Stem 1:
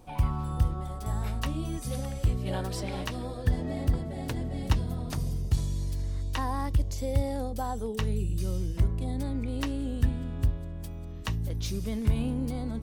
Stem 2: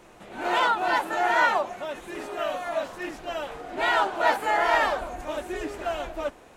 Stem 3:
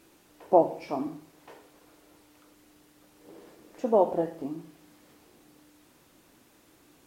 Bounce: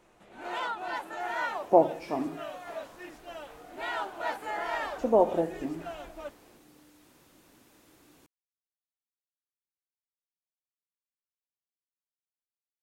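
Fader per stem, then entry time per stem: mute, -11.0 dB, 0.0 dB; mute, 0.00 s, 1.20 s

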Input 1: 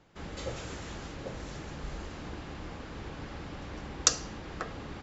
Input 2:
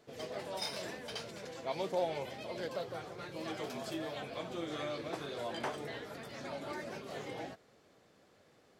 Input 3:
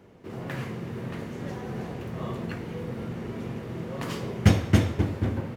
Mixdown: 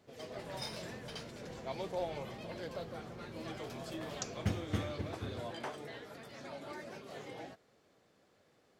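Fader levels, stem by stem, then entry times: -19.0 dB, -4.0 dB, -16.0 dB; 0.15 s, 0.00 s, 0.00 s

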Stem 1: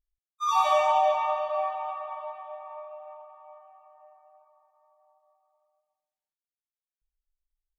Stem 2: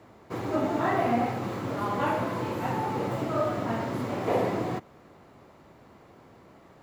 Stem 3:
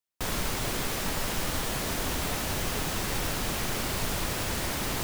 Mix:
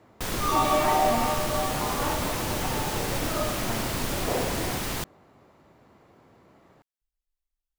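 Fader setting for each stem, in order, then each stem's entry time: -1.5 dB, -3.5 dB, 0.0 dB; 0.00 s, 0.00 s, 0.00 s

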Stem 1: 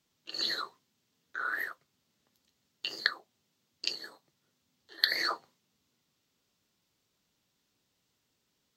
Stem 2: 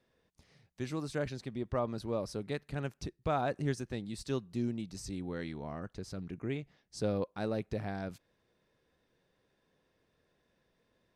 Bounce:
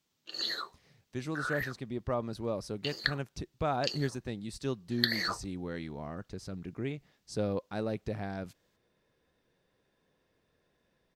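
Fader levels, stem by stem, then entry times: -2.0 dB, +0.5 dB; 0.00 s, 0.35 s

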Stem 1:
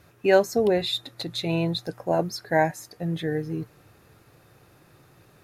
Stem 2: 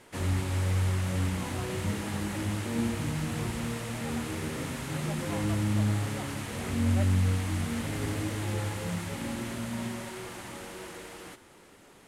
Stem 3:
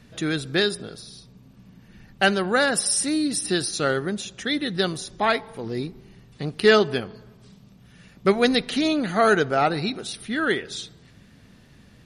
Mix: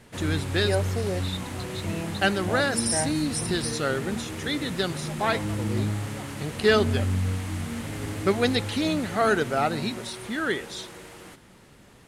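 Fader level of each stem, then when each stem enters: -9.0 dB, -0.5 dB, -4.0 dB; 0.40 s, 0.00 s, 0.00 s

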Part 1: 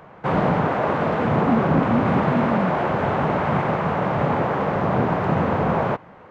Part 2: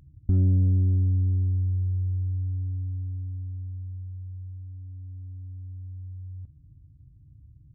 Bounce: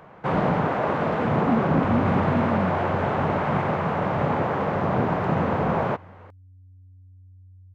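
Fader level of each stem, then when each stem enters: -2.5 dB, -10.5 dB; 0.00 s, 1.55 s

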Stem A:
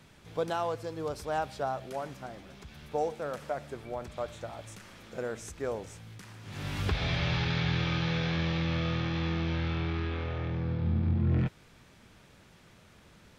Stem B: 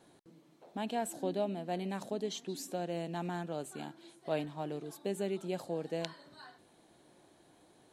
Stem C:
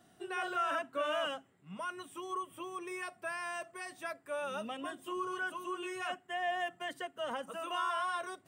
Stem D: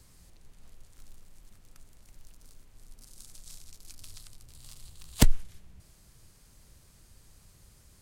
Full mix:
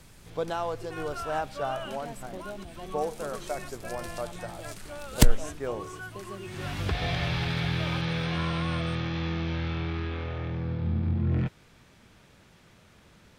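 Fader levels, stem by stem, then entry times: +0.5 dB, -7.5 dB, -4.5 dB, +2.0 dB; 0.00 s, 1.10 s, 0.60 s, 0.00 s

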